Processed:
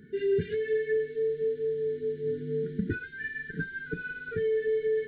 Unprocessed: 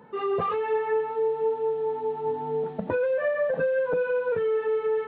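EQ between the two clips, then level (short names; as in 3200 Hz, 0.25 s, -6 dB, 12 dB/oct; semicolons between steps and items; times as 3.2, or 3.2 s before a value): brick-wall FIR band-stop 450–1400 Hz; low shelf 150 Hz +9.5 dB; notch 2600 Hz, Q 5.3; 0.0 dB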